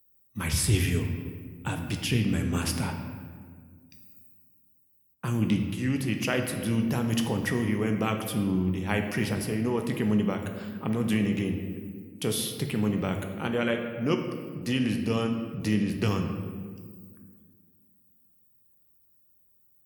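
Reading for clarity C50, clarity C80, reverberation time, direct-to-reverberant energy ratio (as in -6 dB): 6.5 dB, 7.5 dB, 1.8 s, 4.0 dB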